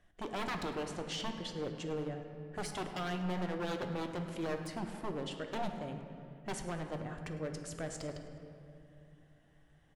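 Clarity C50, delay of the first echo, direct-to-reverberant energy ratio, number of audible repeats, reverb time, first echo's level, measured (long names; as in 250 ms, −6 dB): 6.0 dB, 104 ms, 4.5 dB, 1, 2.8 s, −16.5 dB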